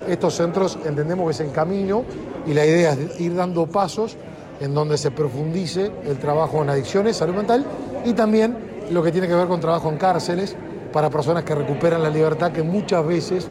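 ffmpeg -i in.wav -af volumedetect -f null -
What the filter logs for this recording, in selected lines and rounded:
mean_volume: -20.4 dB
max_volume: -7.3 dB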